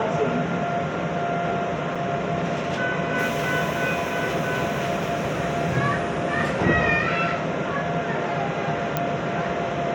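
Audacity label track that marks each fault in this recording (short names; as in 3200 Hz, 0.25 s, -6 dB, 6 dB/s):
1.950000	1.960000	gap 5 ms
8.970000	8.970000	pop -8 dBFS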